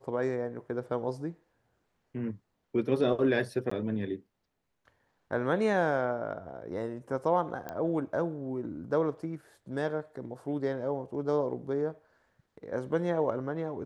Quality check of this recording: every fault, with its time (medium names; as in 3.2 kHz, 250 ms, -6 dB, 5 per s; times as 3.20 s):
3.70–3.71 s: dropout 14 ms
7.69 s: pop -23 dBFS